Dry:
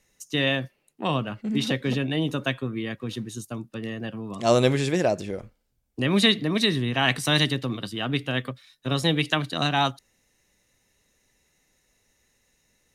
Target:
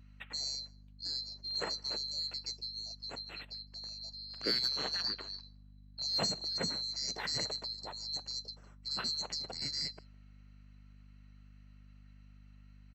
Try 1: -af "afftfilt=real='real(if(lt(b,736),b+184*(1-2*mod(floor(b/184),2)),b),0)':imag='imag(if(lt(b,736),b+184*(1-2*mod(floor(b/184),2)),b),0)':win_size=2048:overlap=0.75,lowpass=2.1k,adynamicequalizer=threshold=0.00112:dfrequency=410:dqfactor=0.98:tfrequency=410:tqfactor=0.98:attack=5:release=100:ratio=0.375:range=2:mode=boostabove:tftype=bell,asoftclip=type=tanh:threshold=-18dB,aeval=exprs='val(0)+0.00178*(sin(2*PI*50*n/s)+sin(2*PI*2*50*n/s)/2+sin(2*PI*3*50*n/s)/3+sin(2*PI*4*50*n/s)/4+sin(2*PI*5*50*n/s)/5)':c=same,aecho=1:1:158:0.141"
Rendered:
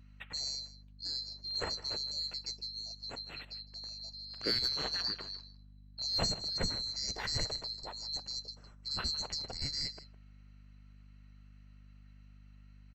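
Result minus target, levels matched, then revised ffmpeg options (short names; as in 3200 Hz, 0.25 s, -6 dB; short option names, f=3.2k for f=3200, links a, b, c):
echo-to-direct +12 dB; 125 Hz band +4.0 dB
-af "afftfilt=real='real(if(lt(b,736),b+184*(1-2*mod(floor(b/184),2)),b),0)':imag='imag(if(lt(b,736),b+184*(1-2*mod(floor(b/184),2)),b),0)':win_size=2048:overlap=0.75,lowpass=2.1k,adynamicequalizer=threshold=0.00112:dfrequency=410:dqfactor=0.98:tfrequency=410:tqfactor=0.98:attack=5:release=100:ratio=0.375:range=2:mode=boostabove:tftype=bell,highpass=f=140:w=0.5412,highpass=f=140:w=1.3066,asoftclip=type=tanh:threshold=-18dB,aeval=exprs='val(0)+0.00178*(sin(2*PI*50*n/s)+sin(2*PI*2*50*n/s)/2+sin(2*PI*3*50*n/s)/3+sin(2*PI*4*50*n/s)/4+sin(2*PI*5*50*n/s)/5)':c=same,aecho=1:1:158:0.0355"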